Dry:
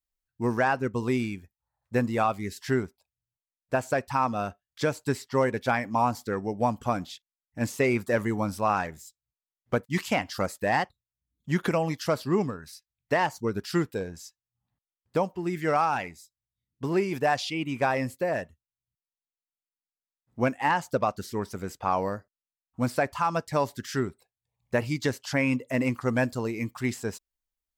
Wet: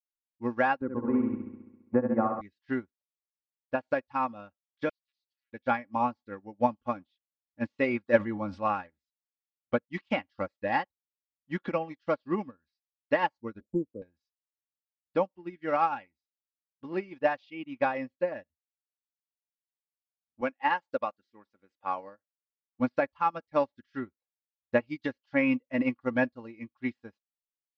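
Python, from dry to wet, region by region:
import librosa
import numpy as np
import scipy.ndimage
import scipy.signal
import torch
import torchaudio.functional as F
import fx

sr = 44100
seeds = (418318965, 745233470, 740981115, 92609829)

y = fx.chain(x, sr, fx.lowpass(hz=1300.0, slope=24),
    fx.room_flutter(wall_m=11.5, rt60_s=1.4),
    fx.band_squash(depth_pct=70), at=(0.81, 2.41))
y = fx.chain(y, sr, fx.cheby2_highpass(hz=1100.0, order=4, stop_db=60),
    fx.resample_bad(factor=4, down='filtered', up='hold'),
    fx.doppler_dist(depth_ms=0.57), at=(4.89, 5.53))
y = fx.chain(y, sr, fx.high_shelf(hz=4500.0, db=-4.5),
    fx.sustainer(db_per_s=20.0), at=(8.16, 8.62))
y = fx.chain(y, sr, fx.brickwall_bandstop(low_hz=630.0, high_hz=6800.0),
    fx.band_squash(depth_pct=70), at=(13.6, 14.02))
y = fx.chain(y, sr, fx.highpass(hz=400.0, slope=6),
    fx.peak_eq(hz=8200.0, db=7.0, octaves=0.57), at=(20.41, 22.8))
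y = scipy.signal.sosfilt(scipy.signal.butter(4, 3900.0, 'lowpass', fs=sr, output='sos'), y)
y = y + 0.61 * np.pad(y, (int(3.6 * sr / 1000.0), 0))[:len(y)]
y = fx.upward_expand(y, sr, threshold_db=-41.0, expansion=2.5)
y = y * 10.0 ** (2.0 / 20.0)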